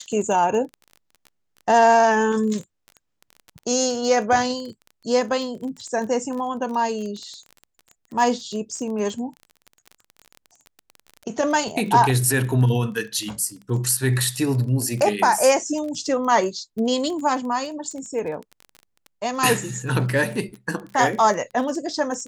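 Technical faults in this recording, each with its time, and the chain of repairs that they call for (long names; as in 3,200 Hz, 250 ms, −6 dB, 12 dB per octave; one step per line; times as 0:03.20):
surface crackle 21 per second −30 dBFS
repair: click removal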